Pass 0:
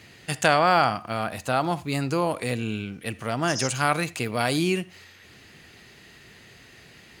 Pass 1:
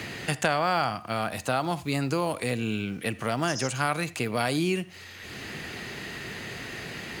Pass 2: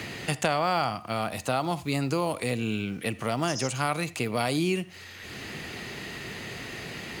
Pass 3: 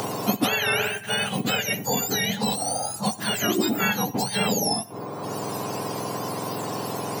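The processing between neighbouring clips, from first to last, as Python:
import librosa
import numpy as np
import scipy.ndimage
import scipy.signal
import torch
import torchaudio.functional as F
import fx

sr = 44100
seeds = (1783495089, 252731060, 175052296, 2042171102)

y1 = fx.quant_companded(x, sr, bits=8)
y1 = fx.band_squash(y1, sr, depth_pct=70)
y1 = y1 * 10.0 ** (-2.5 / 20.0)
y2 = fx.dynamic_eq(y1, sr, hz=1600.0, q=4.3, threshold_db=-47.0, ratio=4.0, max_db=-6)
y3 = fx.octave_mirror(y2, sr, pivot_hz=1400.0)
y3 = fx.band_squash(y3, sr, depth_pct=40)
y3 = y3 * 10.0 ** (6.0 / 20.0)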